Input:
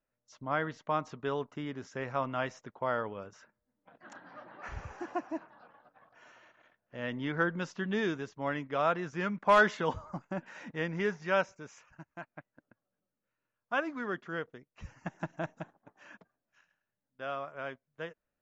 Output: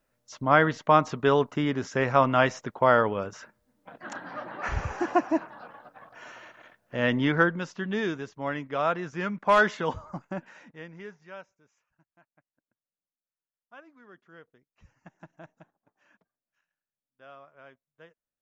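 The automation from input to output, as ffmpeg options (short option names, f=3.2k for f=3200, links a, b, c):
-af "volume=18.5dB,afade=t=out:st=7.16:d=0.44:silence=0.334965,afade=t=out:st=10.34:d=0.35:silence=0.298538,afade=t=out:st=10.69:d=0.81:silence=0.316228,afade=t=in:st=13.98:d=0.73:silence=0.473151"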